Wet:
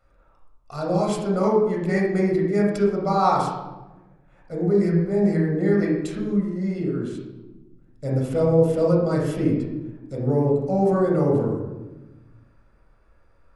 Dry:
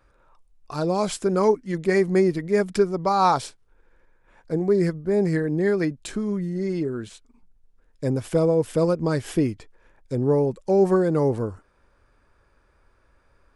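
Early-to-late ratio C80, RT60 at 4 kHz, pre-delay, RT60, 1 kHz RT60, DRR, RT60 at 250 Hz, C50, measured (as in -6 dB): 5.0 dB, 0.70 s, 20 ms, 1.1 s, 1.0 s, -2.0 dB, 1.7 s, 2.0 dB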